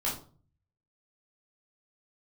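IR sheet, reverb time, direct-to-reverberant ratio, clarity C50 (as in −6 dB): 0.40 s, −6.0 dB, 6.5 dB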